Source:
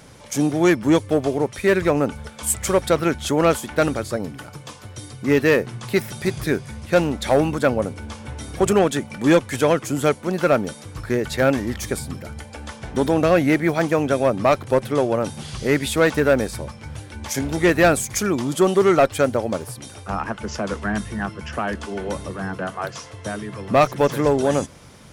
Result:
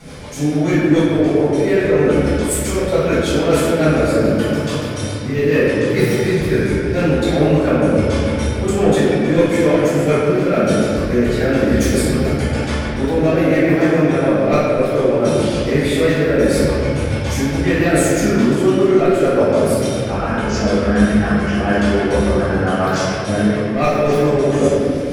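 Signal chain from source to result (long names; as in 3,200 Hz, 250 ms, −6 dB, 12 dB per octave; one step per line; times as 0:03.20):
reversed playback
downward compressor 6 to 1, threshold −27 dBFS, peak gain reduction 15 dB
reversed playback
rotating-speaker cabinet horn 7 Hz
convolution reverb RT60 2.7 s, pre-delay 4 ms, DRR −14.5 dB
level −2 dB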